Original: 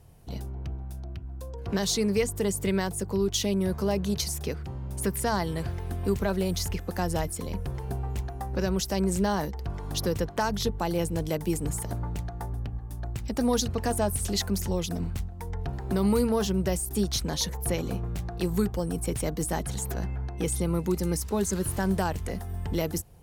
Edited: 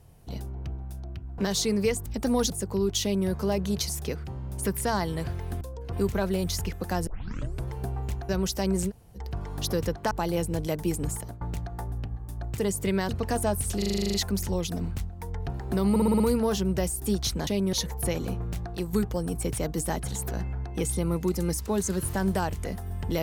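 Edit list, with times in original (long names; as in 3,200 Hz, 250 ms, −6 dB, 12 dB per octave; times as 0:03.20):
0:01.38–0:01.70: move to 0:06.00
0:02.38–0:02.89: swap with 0:13.20–0:13.64
0:03.41–0:03.67: duplicate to 0:17.36
0:07.14: tape start 0.58 s
0:08.36–0:08.62: remove
0:09.22–0:09.50: fill with room tone, crossfade 0.06 s
0:10.44–0:10.73: remove
0:11.73–0:12.03: fade out, to −16.5 dB
0:14.33: stutter 0.04 s, 10 plays
0:16.09: stutter 0.06 s, 6 plays
0:18.30–0:18.56: fade out, to −7.5 dB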